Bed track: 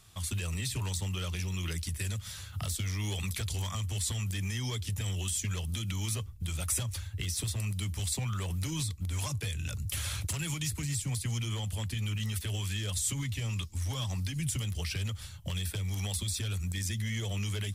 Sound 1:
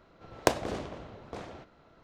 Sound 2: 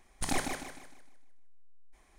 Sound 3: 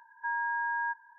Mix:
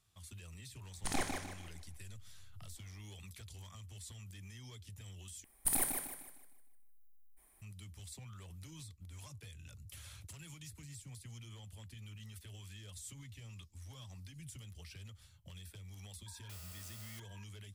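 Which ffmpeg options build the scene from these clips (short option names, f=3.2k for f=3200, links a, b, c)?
-filter_complex "[2:a]asplit=2[a][b];[0:a]volume=-17.5dB[c];[b]aexciter=amount=11.6:drive=6.7:freq=9.2k[d];[3:a]aeval=exprs='(mod(126*val(0)+1,2)-1)/126':c=same[e];[c]asplit=2[f][g];[f]atrim=end=5.444[h];[d]atrim=end=2.18,asetpts=PTS-STARTPTS,volume=-8.5dB[i];[g]atrim=start=7.616[j];[a]atrim=end=2.18,asetpts=PTS-STARTPTS,volume=-4.5dB,afade=t=in:d=0.004:c=hsin,afade=t=out:st=2.176:d=0.004:c=hsin,adelay=830[k];[e]atrim=end=1.18,asetpts=PTS-STARTPTS,volume=-6.5dB,afade=t=in:d=0.004:c=hsin,afade=t=out:st=1.176:d=0.004:c=hsin,adelay=16260[l];[h][i]acrossfade=d=0.004:c1=hsin:c2=hsin[m];[m][j]acrossfade=d=0.004:c1=hsin:c2=hsin[n];[n][k][l]amix=inputs=3:normalize=0"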